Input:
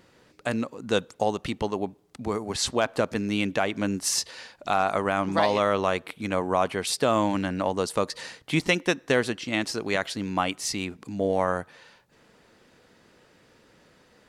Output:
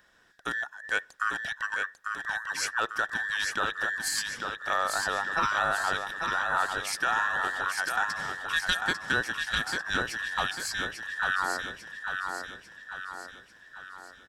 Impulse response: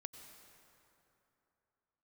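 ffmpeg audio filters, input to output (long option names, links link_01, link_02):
-af "afftfilt=real='real(if(between(b,1,1012),(2*floor((b-1)/92)+1)*92-b,b),0)':imag='imag(if(between(b,1,1012),(2*floor((b-1)/92)+1)*92-b,b),0)*if(between(b,1,1012),-1,1)':win_size=2048:overlap=0.75,aecho=1:1:846|1692|2538|3384|4230|5076:0.562|0.281|0.141|0.0703|0.0351|0.0176,volume=-5dB"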